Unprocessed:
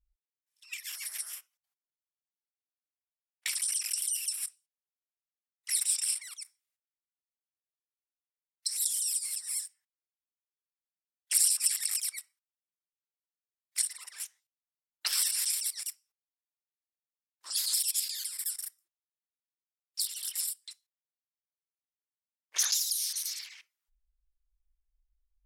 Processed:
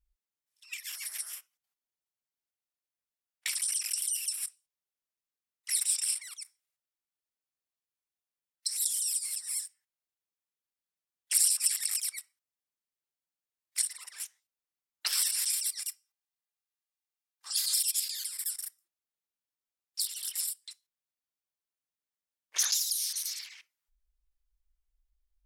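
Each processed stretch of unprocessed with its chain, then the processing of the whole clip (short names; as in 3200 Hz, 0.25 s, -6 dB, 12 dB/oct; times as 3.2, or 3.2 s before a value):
15.51–17.94 HPF 700 Hz + comb 2.5 ms, depth 47%
whole clip: dry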